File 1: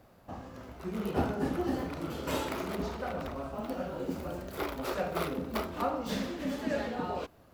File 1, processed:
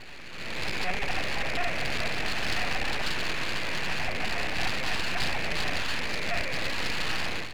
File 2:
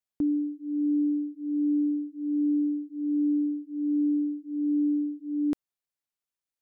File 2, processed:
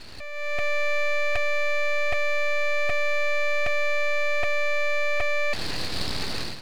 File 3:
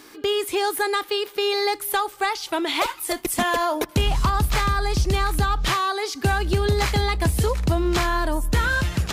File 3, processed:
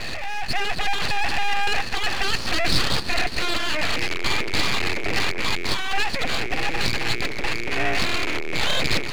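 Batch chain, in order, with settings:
one-bit comparator; peaking EQ 380 Hz +12 dB 0.43 oct; level rider gain up to 15.5 dB; four-pole ladder low-pass 2.3 kHz, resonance 85%; full-wave rectifier; loudspeaker Doppler distortion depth 0.29 ms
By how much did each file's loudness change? +5.0 LU, +2.0 LU, -1.0 LU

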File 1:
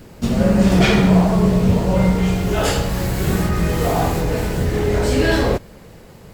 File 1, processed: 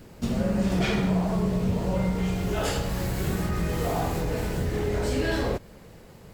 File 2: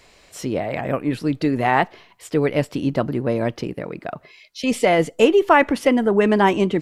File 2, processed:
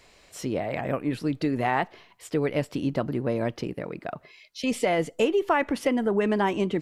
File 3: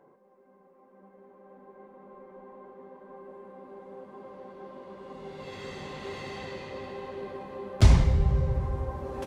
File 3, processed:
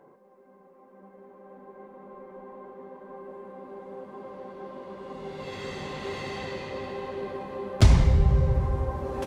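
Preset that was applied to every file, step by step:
compression 2:1, threshold -18 dBFS; normalise loudness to -27 LUFS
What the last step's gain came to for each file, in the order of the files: -6.5 dB, -4.0 dB, +4.0 dB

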